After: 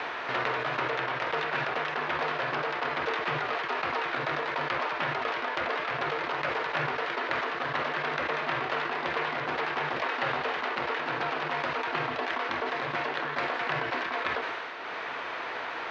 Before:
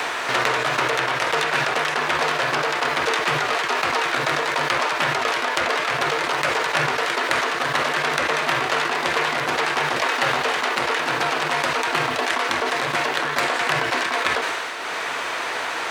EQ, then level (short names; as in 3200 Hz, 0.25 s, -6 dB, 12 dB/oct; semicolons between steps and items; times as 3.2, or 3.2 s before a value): Chebyshev low-pass 6800 Hz, order 2; air absorption 260 m; -6.0 dB